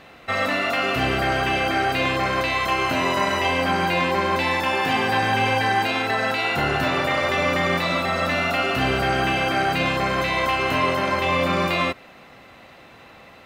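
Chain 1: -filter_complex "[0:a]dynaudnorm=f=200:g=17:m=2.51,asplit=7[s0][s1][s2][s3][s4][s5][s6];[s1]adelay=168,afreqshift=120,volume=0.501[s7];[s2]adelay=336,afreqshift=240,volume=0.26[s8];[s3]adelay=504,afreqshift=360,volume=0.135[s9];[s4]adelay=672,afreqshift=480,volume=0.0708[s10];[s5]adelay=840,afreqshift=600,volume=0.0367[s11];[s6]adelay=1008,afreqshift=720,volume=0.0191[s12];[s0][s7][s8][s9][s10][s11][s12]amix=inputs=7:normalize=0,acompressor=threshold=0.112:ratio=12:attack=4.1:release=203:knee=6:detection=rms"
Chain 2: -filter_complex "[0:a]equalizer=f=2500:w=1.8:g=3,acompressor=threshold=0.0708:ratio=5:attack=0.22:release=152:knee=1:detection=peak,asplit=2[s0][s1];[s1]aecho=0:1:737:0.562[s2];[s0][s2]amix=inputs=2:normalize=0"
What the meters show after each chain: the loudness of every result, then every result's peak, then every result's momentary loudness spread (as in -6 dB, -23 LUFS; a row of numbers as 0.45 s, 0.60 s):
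-24.0 LUFS, -27.0 LUFS; -12.5 dBFS, -16.0 dBFS; 2 LU, 5 LU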